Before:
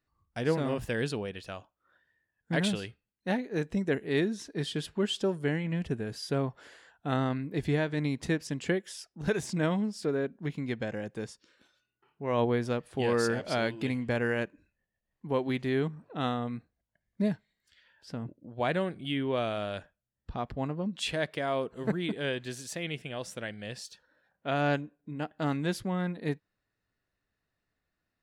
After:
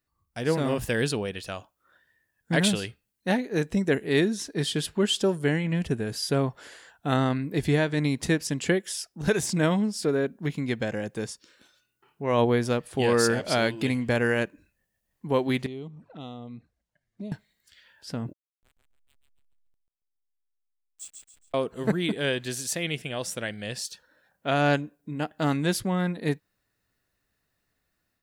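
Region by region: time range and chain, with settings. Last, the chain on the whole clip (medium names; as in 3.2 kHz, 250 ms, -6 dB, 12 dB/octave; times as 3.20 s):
15.66–17.32 s: compression 2:1, threshold -49 dBFS + touch-sensitive flanger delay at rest 9.7 ms, full sweep at -42.5 dBFS + distance through air 59 m
18.33–21.54 s: band-pass filter 7.8 kHz, Q 13 + hysteresis with a dead band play -51 dBFS + feedback delay 139 ms, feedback 35%, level -5 dB
whole clip: treble shelf 6.2 kHz +10 dB; level rider gain up to 7 dB; trim -2 dB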